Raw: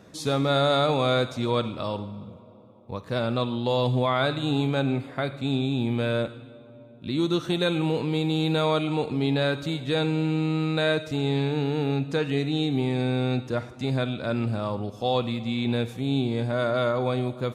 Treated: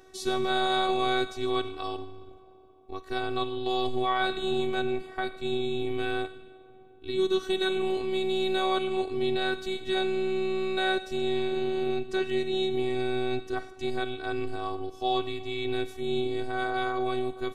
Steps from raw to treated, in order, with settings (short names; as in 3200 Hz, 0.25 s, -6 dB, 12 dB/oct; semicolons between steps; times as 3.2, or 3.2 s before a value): robotiser 377 Hz